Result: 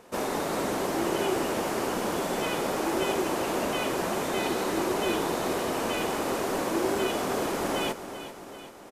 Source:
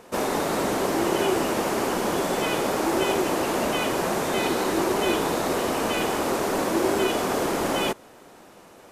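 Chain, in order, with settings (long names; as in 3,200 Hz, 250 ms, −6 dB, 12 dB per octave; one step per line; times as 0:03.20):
repeating echo 388 ms, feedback 59%, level −12 dB
level −4.5 dB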